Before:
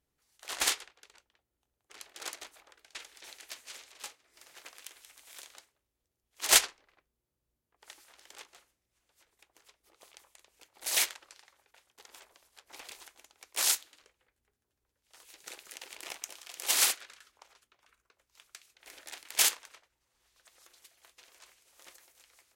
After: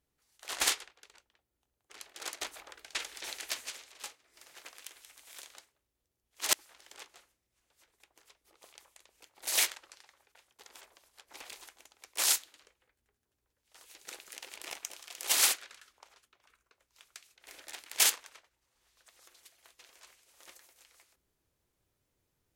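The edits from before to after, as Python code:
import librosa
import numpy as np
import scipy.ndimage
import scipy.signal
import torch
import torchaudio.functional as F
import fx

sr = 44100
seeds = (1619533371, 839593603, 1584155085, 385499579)

y = fx.edit(x, sr, fx.clip_gain(start_s=2.41, length_s=1.29, db=8.5),
    fx.cut(start_s=6.53, length_s=1.39), tone=tone)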